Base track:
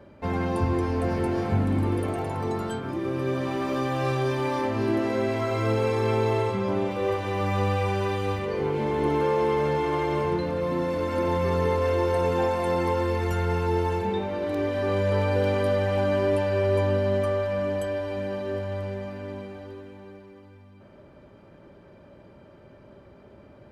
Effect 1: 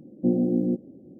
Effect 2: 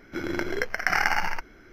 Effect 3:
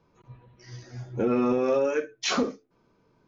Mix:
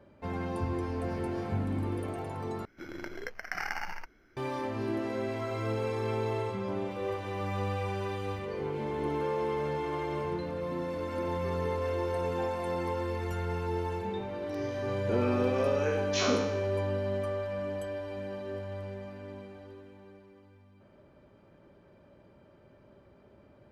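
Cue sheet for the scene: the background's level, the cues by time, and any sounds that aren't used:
base track -8 dB
2.65 replace with 2 -12 dB
13.9 add 3 -7 dB + spectral trails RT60 0.90 s
not used: 1

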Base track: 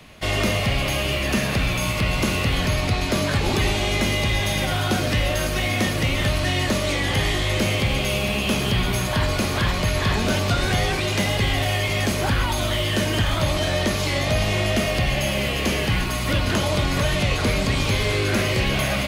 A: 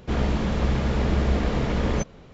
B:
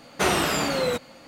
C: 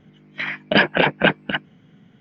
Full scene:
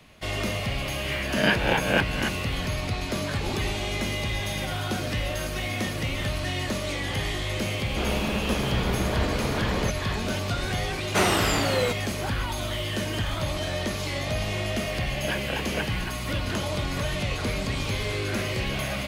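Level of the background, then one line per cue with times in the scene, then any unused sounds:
base track -7 dB
0.72 add C -9.5 dB + spectral swells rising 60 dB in 0.61 s
7.88 add A -0.5 dB + low shelf 200 Hz -8.5 dB
10.95 add B -0.5 dB
14.53 add C -15.5 dB

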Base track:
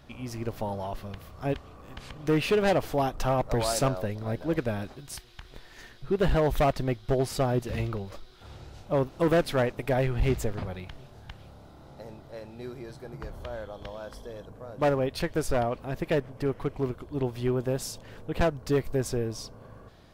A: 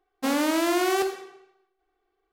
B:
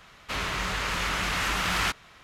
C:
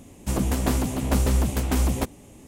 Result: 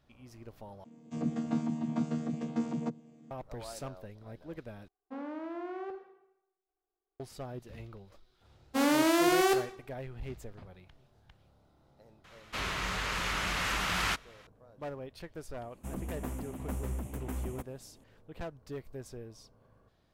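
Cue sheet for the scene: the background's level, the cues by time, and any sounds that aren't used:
base track -16 dB
0.84 replace with C -5.5 dB + chord vocoder bare fifth, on D#3
4.88 replace with A -15.5 dB + LPF 1300 Hz
8.51 add A -2 dB + three-band expander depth 70%
12.24 add B -4.5 dB
15.57 add C -15 dB + bell 4500 Hz -14.5 dB 0.87 oct

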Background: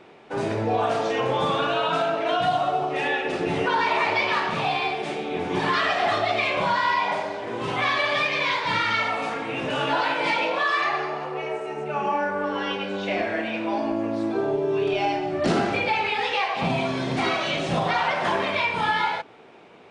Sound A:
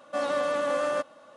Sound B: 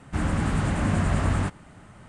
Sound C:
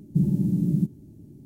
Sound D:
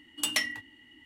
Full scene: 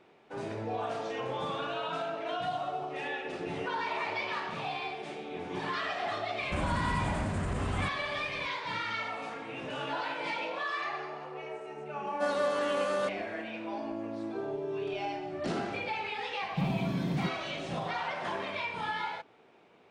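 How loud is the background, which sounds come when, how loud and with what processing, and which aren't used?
background -11.5 dB
6.39 add B -2.5 dB + limiter -22.5 dBFS
12.07 add A -3.5 dB + bell 4300 Hz +4.5 dB 0.21 oct
16.42 add C -12 dB + sample leveller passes 1
not used: D

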